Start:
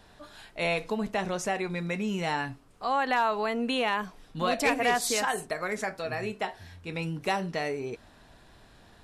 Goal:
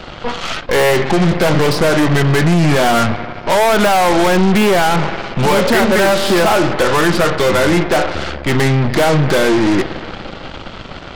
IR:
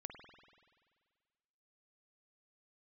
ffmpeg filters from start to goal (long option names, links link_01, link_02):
-filter_complex "[0:a]asplit=2[link_01][link_02];[1:a]atrim=start_sample=2205[link_03];[link_02][link_03]afir=irnorm=-1:irlink=0,volume=-6.5dB[link_04];[link_01][link_04]amix=inputs=2:normalize=0,acrossover=split=130|2200[link_05][link_06][link_07];[link_05]acompressor=threshold=-58dB:ratio=4[link_08];[link_06]acompressor=threshold=-25dB:ratio=4[link_09];[link_07]acompressor=threshold=-44dB:ratio=4[link_10];[link_08][link_09][link_10]amix=inputs=3:normalize=0,apsyclip=23.5dB,asetrate=35721,aresample=44100,aresample=11025,asoftclip=type=tanh:threshold=-9dB,aresample=44100,aeval=exprs='0.447*(cos(1*acos(clip(val(0)/0.447,-1,1)))-cos(1*PI/2))+0.0891*(cos(8*acos(clip(val(0)/0.447,-1,1)))-cos(8*PI/2))':channel_layout=same"